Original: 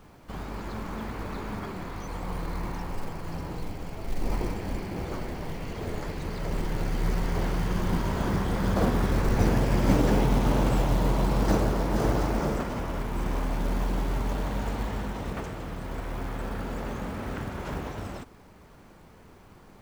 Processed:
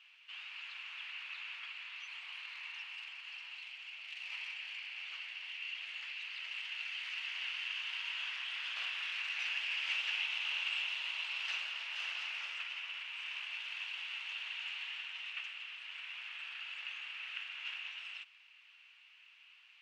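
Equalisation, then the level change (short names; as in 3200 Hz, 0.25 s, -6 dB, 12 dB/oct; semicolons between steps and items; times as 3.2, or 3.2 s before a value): ladder high-pass 2600 Hz, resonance 80%; tape spacing loss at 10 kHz 24 dB; high shelf 4000 Hz -6 dB; +17.0 dB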